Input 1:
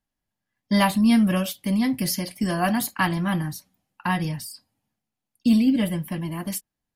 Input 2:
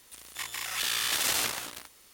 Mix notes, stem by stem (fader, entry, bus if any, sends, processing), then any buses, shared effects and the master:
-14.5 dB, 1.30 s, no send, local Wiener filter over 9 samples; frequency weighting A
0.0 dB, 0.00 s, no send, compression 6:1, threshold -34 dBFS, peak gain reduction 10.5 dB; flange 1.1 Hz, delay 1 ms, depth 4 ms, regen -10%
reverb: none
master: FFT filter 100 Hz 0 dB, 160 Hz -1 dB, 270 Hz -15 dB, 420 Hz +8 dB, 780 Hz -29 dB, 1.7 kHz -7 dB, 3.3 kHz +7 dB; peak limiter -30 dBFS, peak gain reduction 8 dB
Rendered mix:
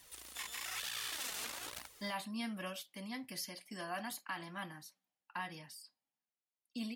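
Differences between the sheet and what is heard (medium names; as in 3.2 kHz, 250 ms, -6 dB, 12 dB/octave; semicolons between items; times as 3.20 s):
stem 1: missing local Wiener filter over 9 samples; master: missing FFT filter 100 Hz 0 dB, 160 Hz -1 dB, 270 Hz -15 dB, 420 Hz +8 dB, 780 Hz -29 dB, 1.7 kHz -7 dB, 3.3 kHz +7 dB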